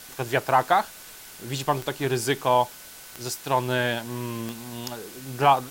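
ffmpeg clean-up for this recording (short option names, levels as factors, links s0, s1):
-af "adeclick=t=4,bandreject=f=1500:w=30,afftdn=nr=24:nf=-44"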